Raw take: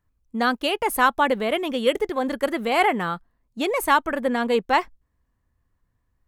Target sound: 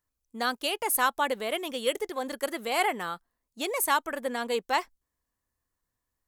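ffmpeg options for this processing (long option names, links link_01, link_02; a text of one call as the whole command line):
ffmpeg -i in.wav -af "bass=frequency=250:gain=-10,treble=frequency=4000:gain=11,volume=-7dB" out.wav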